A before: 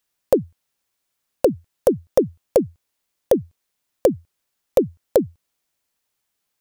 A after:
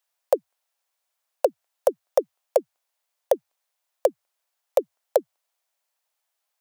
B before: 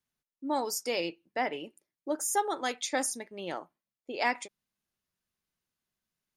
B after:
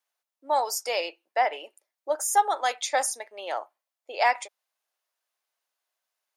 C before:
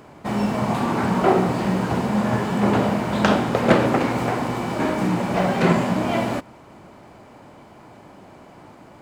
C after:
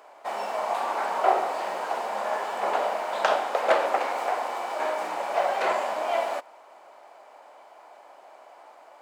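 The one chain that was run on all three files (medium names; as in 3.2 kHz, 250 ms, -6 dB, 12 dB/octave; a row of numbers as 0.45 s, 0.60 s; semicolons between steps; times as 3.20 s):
ladder high-pass 540 Hz, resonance 40%; normalise loudness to -27 LUFS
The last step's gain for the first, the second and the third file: +5.0 dB, +12.0 dB, +3.0 dB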